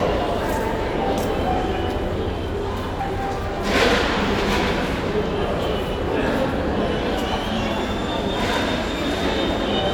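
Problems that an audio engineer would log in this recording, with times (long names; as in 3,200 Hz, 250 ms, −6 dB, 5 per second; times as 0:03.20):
0:02.32–0:03.66: clipping −20.5 dBFS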